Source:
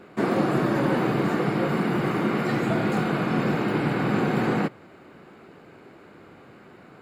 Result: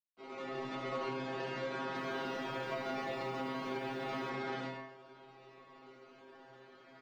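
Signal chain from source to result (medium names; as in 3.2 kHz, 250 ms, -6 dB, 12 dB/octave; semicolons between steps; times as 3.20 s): fade-in on the opening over 1.03 s; decimation with a swept rate 22×, swing 60% 0.4 Hz; de-hum 151.2 Hz, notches 4; speakerphone echo 140 ms, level -17 dB; level rider gain up to 4.5 dB; companded quantiser 4-bit; distance through air 120 m; inharmonic resonator 130 Hz, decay 0.56 s, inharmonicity 0.002; reverberation RT60 0.20 s, pre-delay 77 ms, DRR 4.5 dB; compression 3:1, threshold -36 dBFS, peak gain reduction 8 dB; three-band isolator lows -14 dB, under 300 Hz, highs -17 dB, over 5.7 kHz; 1.81–4.30 s: bit-crushed delay 150 ms, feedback 55%, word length 10-bit, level -13 dB; trim +2 dB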